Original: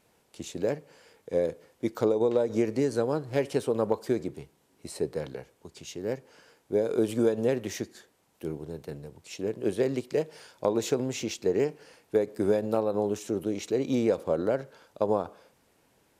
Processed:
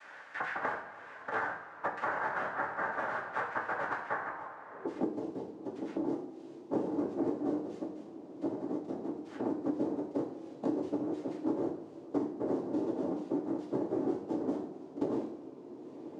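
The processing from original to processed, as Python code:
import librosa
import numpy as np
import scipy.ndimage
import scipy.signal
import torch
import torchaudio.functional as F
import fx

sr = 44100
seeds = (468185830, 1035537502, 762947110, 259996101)

y = scipy.signal.sosfilt(scipy.signal.butter(2, 160.0, 'highpass', fs=sr, output='sos'), x)
y = fx.env_flanger(y, sr, rest_ms=10.4, full_db=-26.0)
y = fx.noise_vocoder(y, sr, seeds[0], bands=2)
y = fx.filter_sweep_bandpass(y, sr, from_hz=1600.0, to_hz=320.0, start_s=4.29, end_s=4.91, q=3.9)
y = fx.rev_double_slope(y, sr, seeds[1], early_s=0.46, late_s=1.7, knee_db=-17, drr_db=-2.0)
y = fx.band_squash(y, sr, depth_pct=100)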